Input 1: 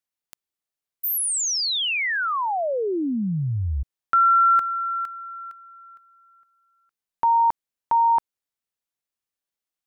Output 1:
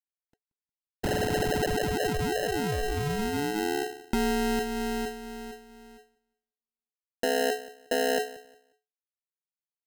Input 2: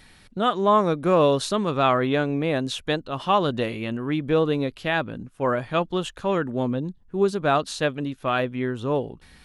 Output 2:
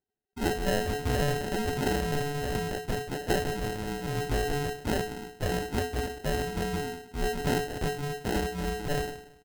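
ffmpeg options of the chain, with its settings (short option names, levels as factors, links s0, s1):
-filter_complex "[0:a]bandreject=f=60:t=h:w=6,bandreject=f=120:t=h:w=6,bandreject=f=180:t=h:w=6,bandreject=f=240:t=h:w=6,bandreject=f=300:t=h:w=6,bandreject=f=360:t=h:w=6,bandreject=f=420:t=h:w=6,afftdn=nr=13:nf=-36,agate=range=0.0631:threshold=0.00158:ratio=16:release=26:detection=rms,highshelf=f=2600:g=3,acompressor=threshold=0.0794:ratio=16:attack=78:release=183:knee=6:detection=rms,asplit=2[s0][s1];[s1]adelay=179,lowpass=f=1400:p=1,volume=0.133,asplit=2[s2][s3];[s3]adelay=179,lowpass=f=1400:p=1,volume=0.31,asplit=2[s4][s5];[s5]adelay=179,lowpass=f=1400:p=1,volume=0.31[s6];[s0][s2][s4][s6]amix=inputs=4:normalize=0,aeval=exprs='max(val(0),0)':c=same,afreqshift=-430,acrusher=samples=38:mix=1:aa=0.000001"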